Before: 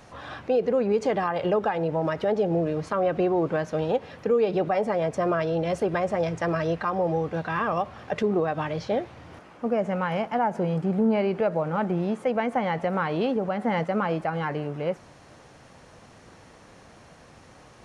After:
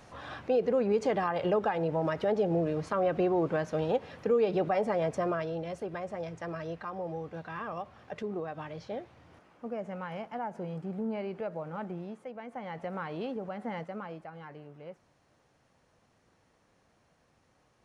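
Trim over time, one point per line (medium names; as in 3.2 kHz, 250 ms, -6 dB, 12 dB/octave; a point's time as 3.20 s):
5.11 s -4 dB
5.75 s -12 dB
11.87 s -12 dB
12.37 s -18.5 dB
12.86 s -11 dB
13.65 s -11 dB
14.31 s -18 dB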